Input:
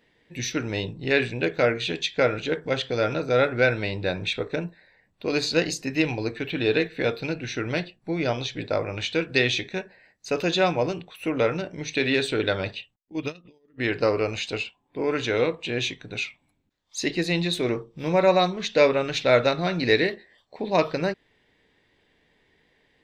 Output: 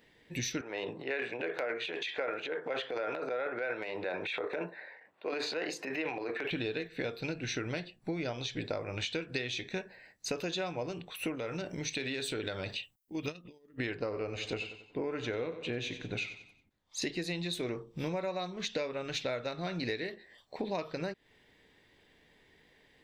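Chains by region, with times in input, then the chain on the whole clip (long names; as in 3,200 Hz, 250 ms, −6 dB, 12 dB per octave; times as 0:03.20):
0:00.61–0:06.51: three-way crossover with the lows and the highs turned down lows −23 dB, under 370 Hz, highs −20 dB, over 2,500 Hz + transient designer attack −3 dB, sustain +11 dB + high-pass filter 110 Hz
0:11.35–0:13.28: high-shelf EQ 7,700 Hz +9.5 dB + downward compressor 2 to 1, threshold −35 dBFS
0:13.95–0:17.02: high-shelf EQ 3,100 Hz −10.5 dB + repeating echo 92 ms, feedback 40%, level −14 dB
whole clip: high-shelf EQ 7,800 Hz +7 dB; downward compressor 12 to 1, threshold −32 dBFS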